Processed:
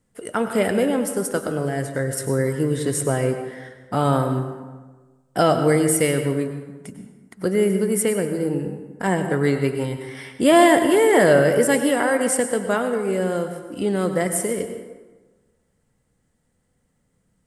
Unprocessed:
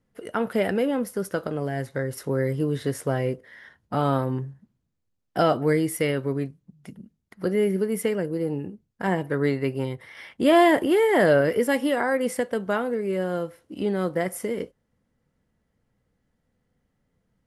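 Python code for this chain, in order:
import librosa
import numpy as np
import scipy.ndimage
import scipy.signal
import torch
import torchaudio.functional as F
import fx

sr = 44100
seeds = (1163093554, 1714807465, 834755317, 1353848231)

y = fx.peak_eq(x, sr, hz=8300.0, db=15.0, octaves=0.58)
y = fx.rev_plate(y, sr, seeds[0], rt60_s=1.3, hf_ratio=0.6, predelay_ms=85, drr_db=7.5)
y = F.gain(torch.from_numpy(y), 3.0).numpy()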